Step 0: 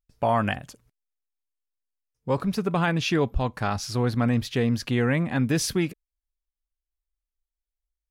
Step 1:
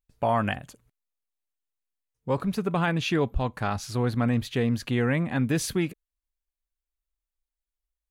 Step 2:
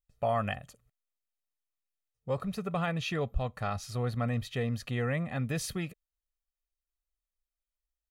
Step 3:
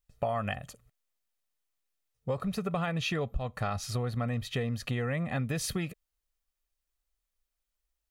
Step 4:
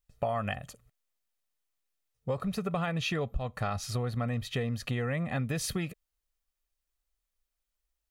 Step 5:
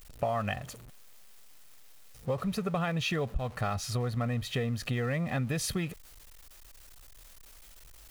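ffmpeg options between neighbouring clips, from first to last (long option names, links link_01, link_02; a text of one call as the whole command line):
ffmpeg -i in.wav -af "equalizer=frequency=5300:width_type=o:width=0.31:gain=-7,volume=-1.5dB" out.wav
ffmpeg -i in.wav -af "aecho=1:1:1.6:0.56,volume=-7dB" out.wav
ffmpeg -i in.wav -af "acompressor=threshold=-34dB:ratio=6,volume=6dB" out.wav
ffmpeg -i in.wav -af anull out.wav
ffmpeg -i in.wav -af "aeval=exprs='val(0)+0.5*0.00562*sgn(val(0))':channel_layout=same" out.wav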